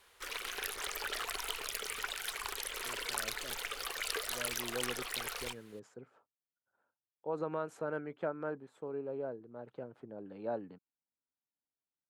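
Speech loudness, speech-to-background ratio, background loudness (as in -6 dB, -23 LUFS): -42.5 LUFS, -4.5 dB, -38.0 LUFS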